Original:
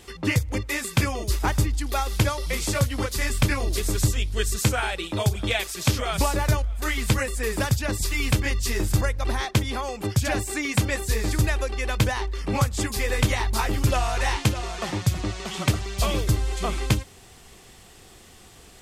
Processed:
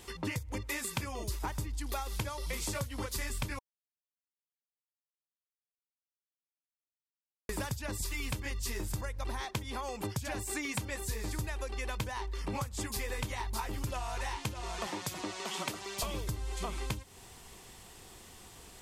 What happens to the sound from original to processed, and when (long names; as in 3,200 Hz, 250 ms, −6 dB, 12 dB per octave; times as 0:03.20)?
0:03.59–0:07.49: silence
0:14.87–0:16.03: high-pass filter 260 Hz
whole clip: parametric band 960 Hz +7.5 dB 0.21 octaves; downward compressor, threshold −29 dBFS; high-shelf EQ 8,700 Hz +5 dB; level −4.5 dB